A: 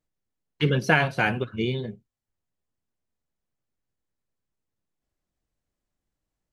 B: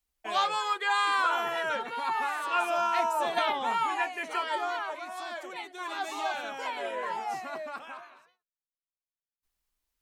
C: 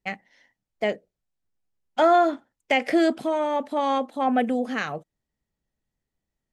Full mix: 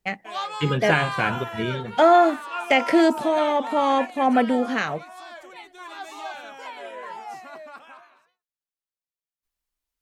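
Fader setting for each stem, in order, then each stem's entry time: -1.0 dB, -3.0 dB, +3.0 dB; 0.00 s, 0.00 s, 0.00 s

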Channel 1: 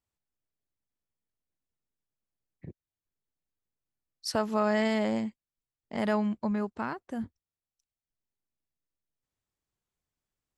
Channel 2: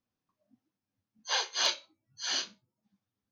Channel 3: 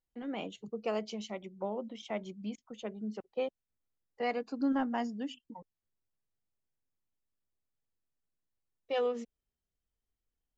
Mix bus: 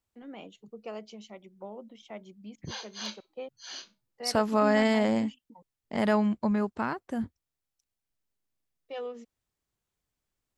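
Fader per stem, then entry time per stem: +3.0 dB, -10.0 dB, -6.0 dB; 0.00 s, 1.40 s, 0.00 s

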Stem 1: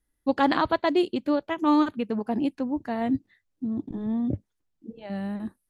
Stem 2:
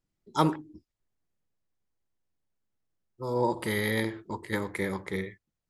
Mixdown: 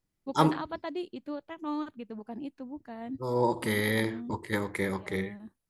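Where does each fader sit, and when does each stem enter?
-13.0 dB, +0.5 dB; 0.00 s, 0.00 s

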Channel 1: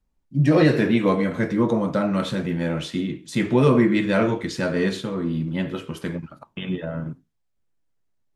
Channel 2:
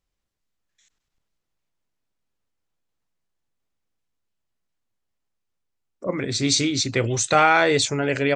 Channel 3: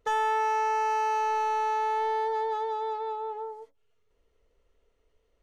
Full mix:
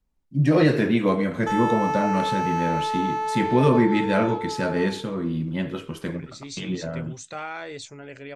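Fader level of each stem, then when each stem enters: -1.5 dB, -17.5 dB, +1.0 dB; 0.00 s, 0.00 s, 1.40 s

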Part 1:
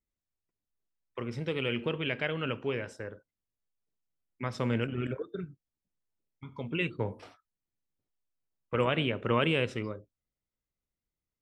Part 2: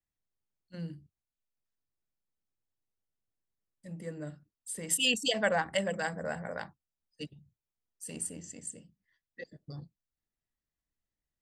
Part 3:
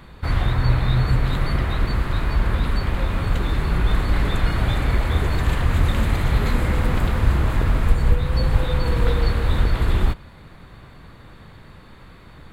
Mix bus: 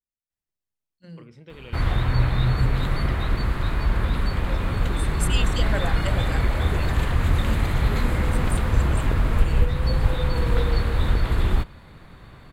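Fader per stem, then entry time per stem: -11.5 dB, -2.5 dB, -2.0 dB; 0.00 s, 0.30 s, 1.50 s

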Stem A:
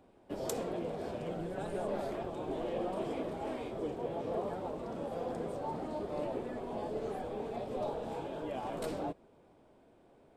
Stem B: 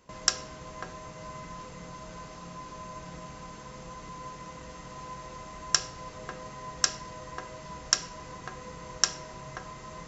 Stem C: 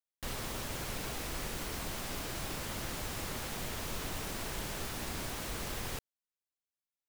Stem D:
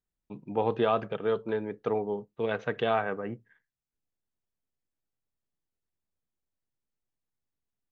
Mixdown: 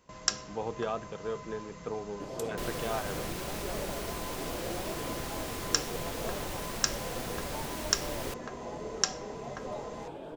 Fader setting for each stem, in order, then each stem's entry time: -2.5 dB, -3.5 dB, 0.0 dB, -8.0 dB; 1.90 s, 0.00 s, 2.35 s, 0.00 s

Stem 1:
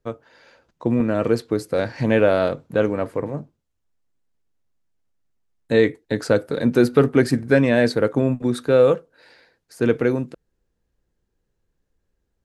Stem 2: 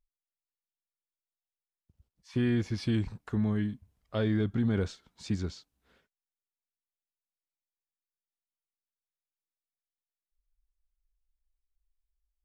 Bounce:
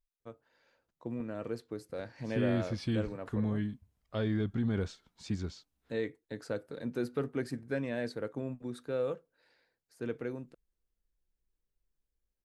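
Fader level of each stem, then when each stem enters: -18.5 dB, -3.5 dB; 0.20 s, 0.00 s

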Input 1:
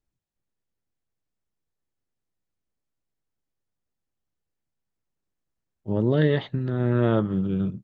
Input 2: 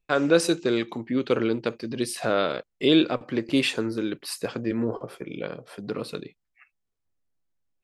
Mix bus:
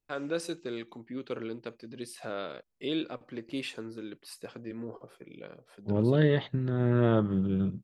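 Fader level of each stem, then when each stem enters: -3.0 dB, -13.0 dB; 0.00 s, 0.00 s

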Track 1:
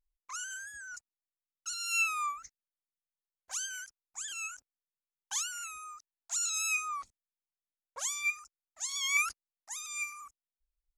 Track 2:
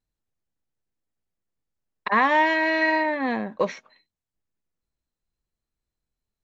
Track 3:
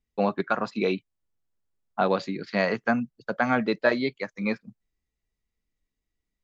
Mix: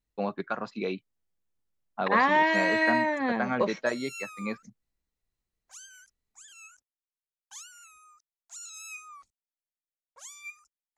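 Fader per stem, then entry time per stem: -11.0 dB, -3.0 dB, -6.5 dB; 2.20 s, 0.00 s, 0.00 s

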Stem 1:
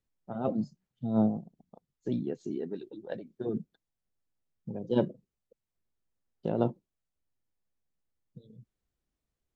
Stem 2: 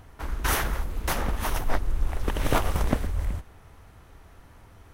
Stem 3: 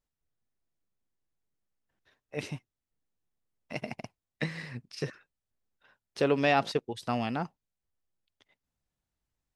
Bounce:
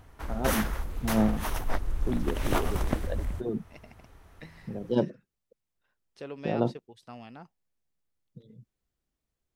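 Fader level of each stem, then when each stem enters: +1.0 dB, -4.0 dB, -14.5 dB; 0.00 s, 0.00 s, 0.00 s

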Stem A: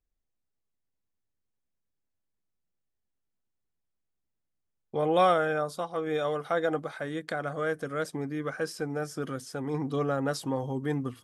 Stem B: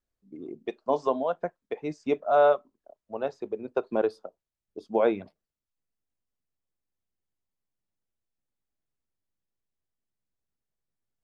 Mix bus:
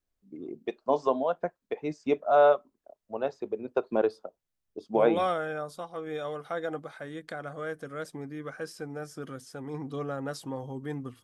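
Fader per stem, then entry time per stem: -5.5 dB, 0.0 dB; 0.00 s, 0.00 s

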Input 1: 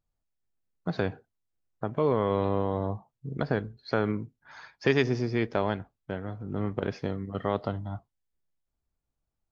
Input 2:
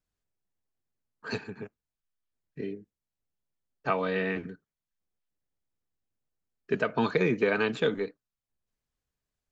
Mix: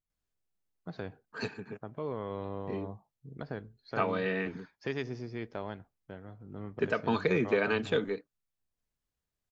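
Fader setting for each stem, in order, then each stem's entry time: -11.5 dB, -2.5 dB; 0.00 s, 0.10 s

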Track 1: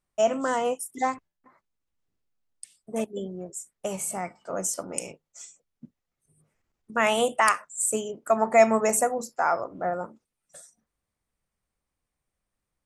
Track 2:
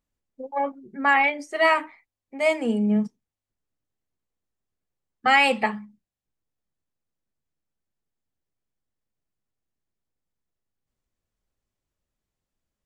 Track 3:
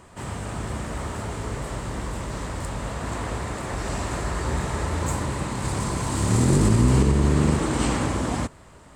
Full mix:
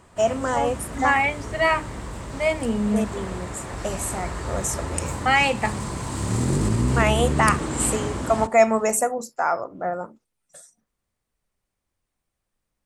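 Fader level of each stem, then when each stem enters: +1.5 dB, -1.0 dB, -3.5 dB; 0.00 s, 0.00 s, 0.00 s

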